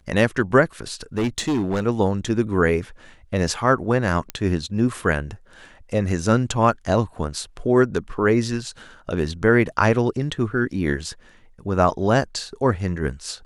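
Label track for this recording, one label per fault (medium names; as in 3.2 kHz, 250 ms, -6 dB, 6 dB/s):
1.180000	1.840000	clipped -18 dBFS
4.300000	4.300000	pop -12 dBFS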